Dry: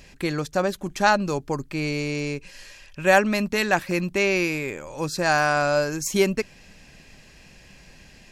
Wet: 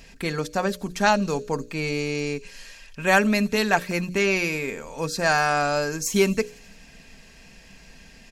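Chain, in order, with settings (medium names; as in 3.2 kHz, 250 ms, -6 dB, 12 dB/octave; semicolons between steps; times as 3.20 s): hum notches 60/120/180/240/300/360/420/480/540/600 Hz; comb 4.4 ms, depth 44%; feedback echo behind a high-pass 85 ms, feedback 65%, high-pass 4.9 kHz, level -16 dB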